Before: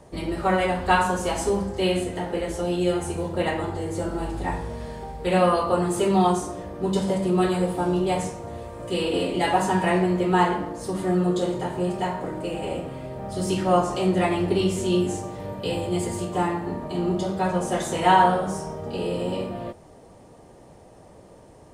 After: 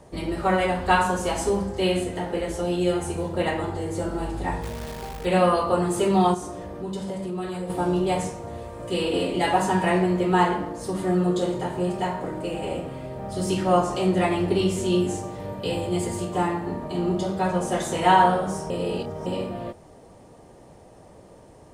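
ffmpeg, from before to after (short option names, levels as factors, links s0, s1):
-filter_complex "[0:a]asplit=3[s0][s1][s2];[s0]afade=t=out:st=4.62:d=0.02[s3];[s1]acrusher=bits=7:dc=4:mix=0:aa=0.000001,afade=t=in:st=4.62:d=0.02,afade=t=out:st=5.24:d=0.02[s4];[s2]afade=t=in:st=5.24:d=0.02[s5];[s3][s4][s5]amix=inputs=3:normalize=0,asettb=1/sr,asplit=3[s6][s7][s8];[s6]atrim=end=6.344[s9];[s7]atrim=start=6.34:end=7.7,asetpts=PTS-STARTPTS,afade=t=in:d=0.004:c=qsin,afade=t=out:st=1.356:d=0.004:c=qsin,acompressor=threshold=0.0282:ratio=2.5:attack=3.2:release=140:knee=1:detection=peak[s10];[s8]atrim=start=7.696[s11];[s9][s10]acrossfade=d=0.004:c1=hsin:c2=qsin[s12];[s12][s11]acrossfade=d=0.004:c1=qsin:c2=hsin,asplit=3[s13][s14][s15];[s13]atrim=end=18.702[s16];[s14]atrim=start=18.698:end=19.262,asetpts=PTS-STARTPTS,areverse[s17];[s15]atrim=start=19.258[s18];[s16][s17]acrossfade=d=0.004:c1=hsin:c2=hsin[s19];[s19][s18]acrossfade=d=0.004:c1=hsin:c2=hsin"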